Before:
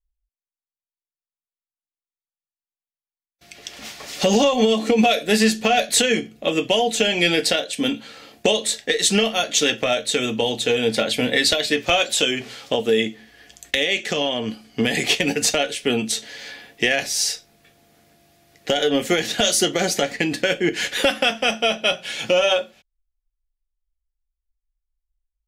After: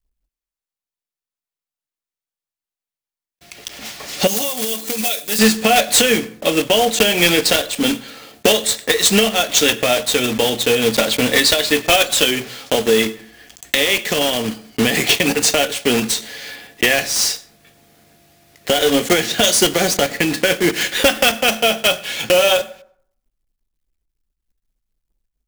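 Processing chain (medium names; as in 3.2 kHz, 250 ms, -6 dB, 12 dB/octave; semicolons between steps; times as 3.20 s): block-companded coder 3-bit; 4.27–5.39 s: pre-emphasis filter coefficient 0.8; plate-style reverb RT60 0.61 s, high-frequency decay 0.5×, pre-delay 75 ms, DRR 19.5 dB; trim +4 dB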